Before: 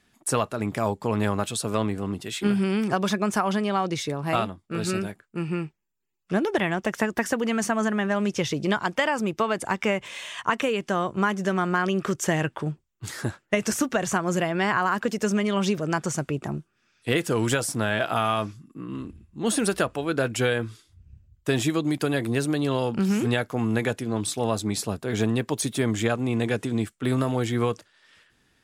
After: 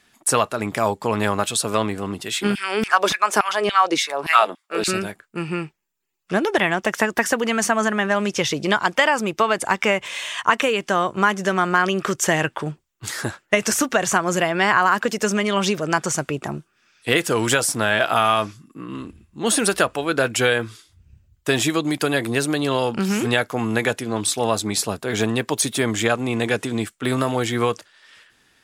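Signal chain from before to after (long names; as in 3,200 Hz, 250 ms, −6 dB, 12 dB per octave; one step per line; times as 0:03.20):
low-shelf EQ 370 Hz −9.5 dB
0:02.55–0:04.88: auto-filter high-pass saw down 3.5 Hz 240–2,900 Hz
level +8 dB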